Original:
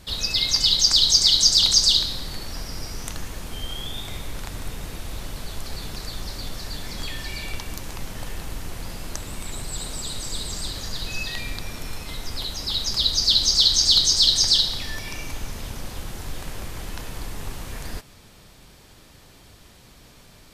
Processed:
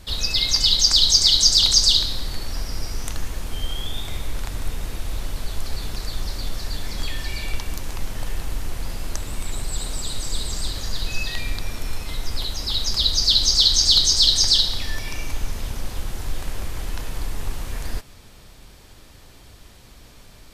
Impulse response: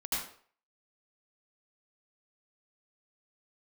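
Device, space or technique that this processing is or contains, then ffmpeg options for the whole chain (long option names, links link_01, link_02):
low shelf boost with a cut just above: -af "lowshelf=frequency=66:gain=7.5,equalizer=frequency=160:width_type=o:width=0.77:gain=-3,volume=1dB"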